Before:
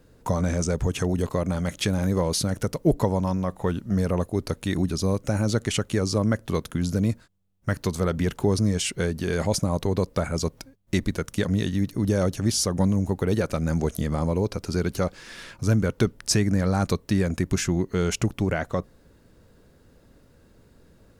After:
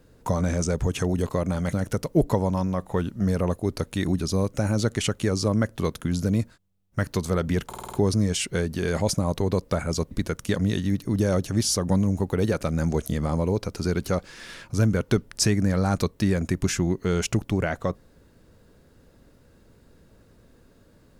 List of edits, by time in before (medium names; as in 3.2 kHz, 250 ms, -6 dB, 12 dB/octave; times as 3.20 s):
1.73–2.43 s: delete
8.38 s: stutter 0.05 s, 6 plays
10.56–11.00 s: delete